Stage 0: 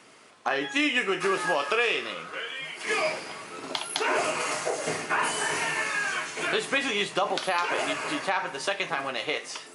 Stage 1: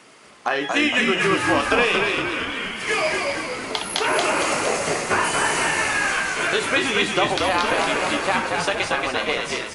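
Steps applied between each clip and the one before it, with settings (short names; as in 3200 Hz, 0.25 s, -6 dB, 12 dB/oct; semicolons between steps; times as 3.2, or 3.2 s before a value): frequency-shifting echo 0.231 s, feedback 55%, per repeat -63 Hz, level -3 dB; gain +4.5 dB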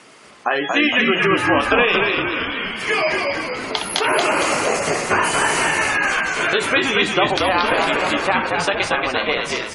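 spectral gate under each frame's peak -25 dB strong; gain +3 dB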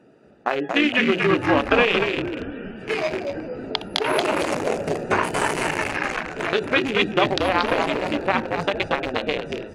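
Wiener smoothing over 41 samples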